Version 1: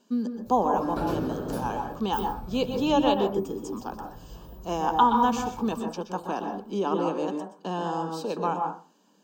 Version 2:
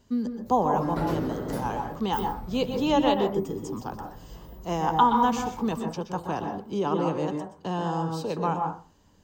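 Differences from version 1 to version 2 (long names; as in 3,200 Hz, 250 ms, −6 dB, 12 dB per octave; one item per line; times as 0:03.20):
speech: remove linear-phase brick-wall high-pass 170 Hz
master: remove Butterworth band-reject 2,000 Hz, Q 5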